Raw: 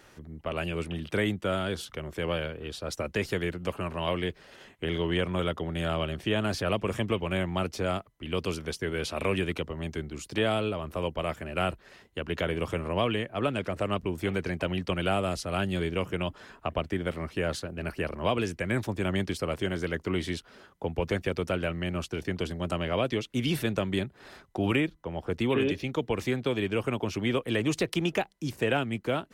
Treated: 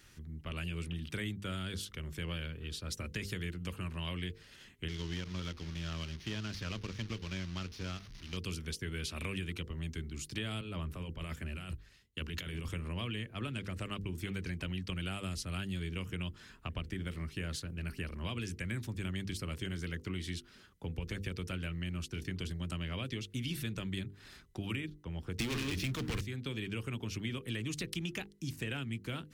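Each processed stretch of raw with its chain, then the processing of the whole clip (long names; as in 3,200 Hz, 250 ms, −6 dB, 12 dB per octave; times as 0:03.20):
0:04.88–0:08.37: linear delta modulator 32 kbit/s, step −33 dBFS + power curve on the samples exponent 1.4
0:10.61–0:12.69: compressor whose output falls as the input rises −33 dBFS + multiband upward and downward expander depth 100%
0:25.39–0:26.21: hum removal 61.33 Hz, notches 5 + leveller curve on the samples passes 5
whole clip: guitar amp tone stack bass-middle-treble 6-0-2; mains-hum notches 50/100/150/200/250/300/350/400/450/500 Hz; downward compressor 4 to 1, threshold −49 dBFS; level +14 dB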